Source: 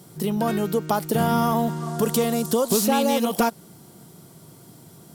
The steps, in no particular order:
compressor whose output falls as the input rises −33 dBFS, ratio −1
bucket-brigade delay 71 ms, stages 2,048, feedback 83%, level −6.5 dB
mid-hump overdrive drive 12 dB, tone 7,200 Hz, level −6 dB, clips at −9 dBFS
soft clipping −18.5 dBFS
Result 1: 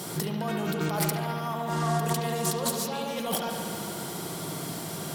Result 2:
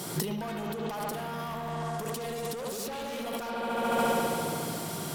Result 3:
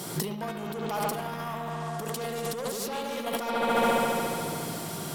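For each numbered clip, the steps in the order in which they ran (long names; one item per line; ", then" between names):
compressor whose output falls as the input rises, then mid-hump overdrive, then soft clipping, then bucket-brigade delay
mid-hump overdrive, then bucket-brigade delay, then soft clipping, then compressor whose output falls as the input rises
soft clipping, then bucket-brigade delay, then compressor whose output falls as the input rises, then mid-hump overdrive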